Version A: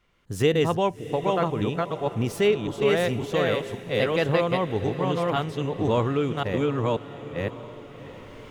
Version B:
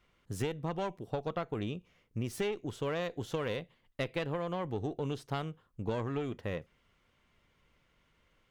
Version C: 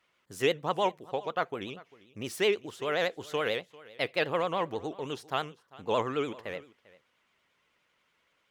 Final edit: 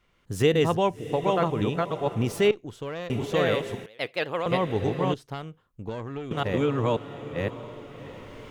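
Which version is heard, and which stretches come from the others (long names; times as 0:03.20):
A
0:02.51–0:03.10: punch in from B
0:03.86–0:04.46: punch in from C
0:05.14–0:06.31: punch in from B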